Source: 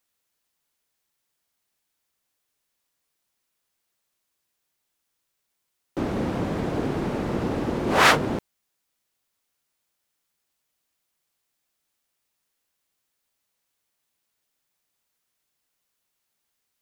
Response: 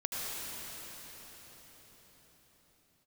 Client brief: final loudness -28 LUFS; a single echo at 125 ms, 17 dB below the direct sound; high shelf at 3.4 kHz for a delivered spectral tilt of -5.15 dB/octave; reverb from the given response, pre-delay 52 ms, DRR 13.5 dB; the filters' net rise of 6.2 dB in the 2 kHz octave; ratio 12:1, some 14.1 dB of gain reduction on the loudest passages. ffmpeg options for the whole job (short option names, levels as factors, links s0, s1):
-filter_complex "[0:a]equalizer=f=2000:t=o:g=5.5,highshelf=f=3400:g=7.5,acompressor=threshold=0.0891:ratio=12,aecho=1:1:125:0.141,asplit=2[s0][s1];[1:a]atrim=start_sample=2205,adelay=52[s2];[s1][s2]afir=irnorm=-1:irlink=0,volume=0.112[s3];[s0][s3]amix=inputs=2:normalize=0,volume=0.944"